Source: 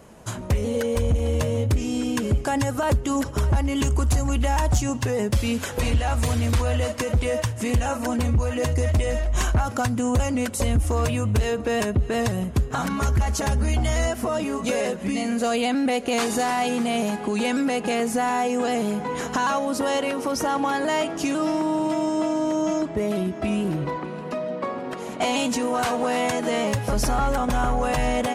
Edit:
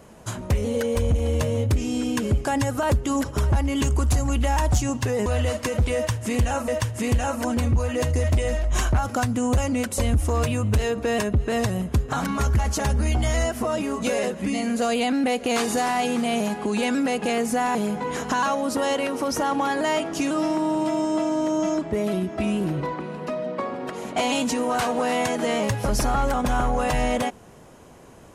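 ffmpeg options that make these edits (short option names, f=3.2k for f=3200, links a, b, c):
-filter_complex "[0:a]asplit=4[a][b][c][d];[a]atrim=end=5.262[e];[b]atrim=start=6.608:end=8.032[f];[c]atrim=start=7.298:end=18.372[g];[d]atrim=start=18.788[h];[e][f]acrossfade=d=0.004:c1=hsin:c2=hsin[i];[i][g]acrossfade=d=0.004:c1=hsin:c2=hsin[j];[j][h]acrossfade=d=0.004:c1=hsin:c2=hsin"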